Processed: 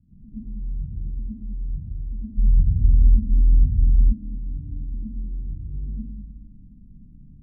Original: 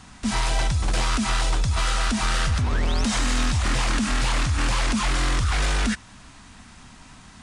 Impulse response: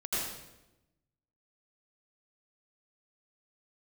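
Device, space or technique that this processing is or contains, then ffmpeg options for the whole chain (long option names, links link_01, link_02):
club heard from the street: -filter_complex "[0:a]alimiter=level_in=1.5dB:limit=-24dB:level=0:latency=1,volume=-1.5dB,lowpass=frequency=230:width=0.5412,lowpass=frequency=230:width=1.3066[link_01];[1:a]atrim=start_sample=2205[link_02];[link_01][link_02]afir=irnorm=-1:irlink=0,asplit=3[link_03][link_04][link_05];[link_03]afade=type=out:start_time=2.37:duration=0.02[link_06];[link_04]aemphasis=mode=reproduction:type=bsi,afade=type=in:start_time=2.37:duration=0.02,afade=type=out:start_time=4.12:duration=0.02[link_07];[link_05]afade=type=in:start_time=4.12:duration=0.02[link_08];[link_06][link_07][link_08]amix=inputs=3:normalize=0,volume=-5.5dB"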